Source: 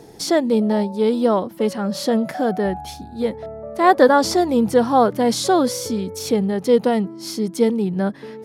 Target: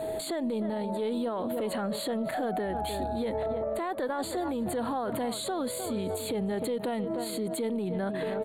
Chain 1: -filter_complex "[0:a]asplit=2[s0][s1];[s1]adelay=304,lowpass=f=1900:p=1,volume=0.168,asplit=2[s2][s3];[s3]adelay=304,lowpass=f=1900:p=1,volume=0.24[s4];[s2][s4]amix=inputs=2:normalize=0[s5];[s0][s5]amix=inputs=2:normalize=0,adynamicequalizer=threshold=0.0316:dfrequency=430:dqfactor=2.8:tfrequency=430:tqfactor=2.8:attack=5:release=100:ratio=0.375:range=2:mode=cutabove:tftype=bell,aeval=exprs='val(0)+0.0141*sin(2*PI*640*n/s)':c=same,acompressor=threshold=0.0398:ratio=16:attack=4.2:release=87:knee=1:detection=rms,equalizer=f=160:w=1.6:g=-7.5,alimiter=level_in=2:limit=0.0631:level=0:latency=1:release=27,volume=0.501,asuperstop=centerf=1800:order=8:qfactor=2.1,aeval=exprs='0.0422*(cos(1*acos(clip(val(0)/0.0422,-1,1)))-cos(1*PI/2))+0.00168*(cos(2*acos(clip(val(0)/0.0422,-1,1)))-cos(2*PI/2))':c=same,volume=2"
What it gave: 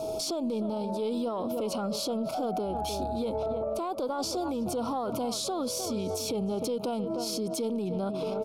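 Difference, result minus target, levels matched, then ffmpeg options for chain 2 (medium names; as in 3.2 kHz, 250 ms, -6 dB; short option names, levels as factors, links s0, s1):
2 kHz band -9.5 dB
-filter_complex "[0:a]asplit=2[s0][s1];[s1]adelay=304,lowpass=f=1900:p=1,volume=0.168,asplit=2[s2][s3];[s3]adelay=304,lowpass=f=1900:p=1,volume=0.24[s4];[s2][s4]amix=inputs=2:normalize=0[s5];[s0][s5]amix=inputs=2:normalize=0,adynamicequalizer=threshold=0.0316:dfrequency=430:dqfactor=2.8:tfrequency=430:tqfactor=2.8:attack=5:release=100:ratio=0.375:range=2:mode=cutabove:tftype=bell,aeval=exprs='val(0)+0.0141*sin(2*PI*640*n/s)':c=same,acompressor=threshold=0.0398:ratio=16:attack=4.2:release=87:knee=1:detection=rms,equalizer=f=160:w=1.6:g=-7.5,alimiter=level_in=2:limit=0.0631:level=0:latency=1:release=27,volume=0.501,asuperstop=centerf=5600:order=8:qfactor=2.1,aeval=exprs='0.0422*(cos(1*acos(clip(val(0)/0.0422,-1,1)))-cos(1*PI/2))+0.00168*(cos(2*acos(clip(val(0)/0.0422,-1,1)))-cos(2*PI/2))':c=same,volume=2"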